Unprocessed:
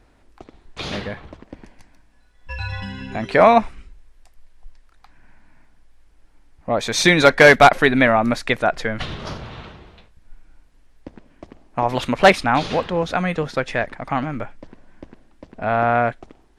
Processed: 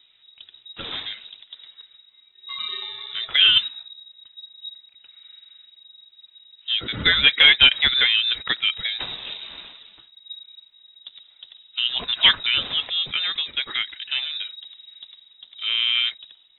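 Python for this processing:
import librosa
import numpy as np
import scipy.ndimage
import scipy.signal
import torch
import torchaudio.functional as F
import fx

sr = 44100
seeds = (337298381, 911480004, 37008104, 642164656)

y = fx.spec_quant(x, sr, step_db=15)
y = fx.freq_invert(y, sr, carrier_hz=3800)
y = y * 10.0 ** (-3.5 / 20.0)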